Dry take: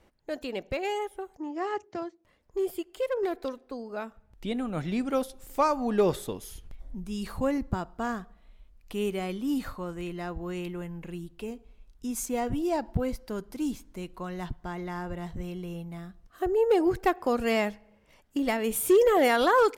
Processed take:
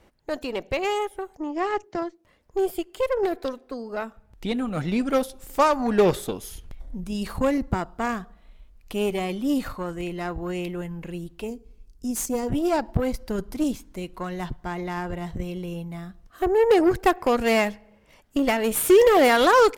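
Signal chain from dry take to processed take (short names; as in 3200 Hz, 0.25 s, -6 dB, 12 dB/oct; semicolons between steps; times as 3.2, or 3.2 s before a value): 11.48–12.49 spectral gain 500–4200 Hz -9 dB; 13.2–13.64 low shelf 150 Hz +8.5 dB; added harmonics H 6 -20 dB, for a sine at -14.5 dBFS; gain +5 dB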